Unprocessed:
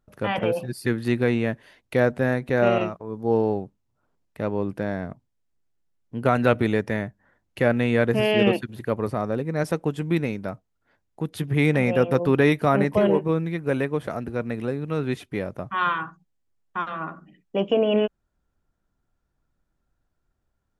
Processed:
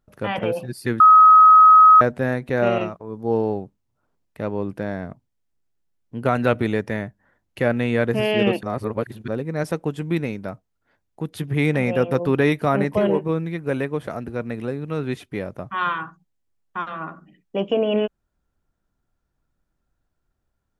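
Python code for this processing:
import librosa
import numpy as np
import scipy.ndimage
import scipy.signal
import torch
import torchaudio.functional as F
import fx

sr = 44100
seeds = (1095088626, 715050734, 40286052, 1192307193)

y = fx.edit(x, sr, fx.bleep(start_s=1.0, length_s=1.01, hz=1270.0, db=-6.5),
    fx.reverse_span(start_s=8.63, length_s=0.65), tone=tone)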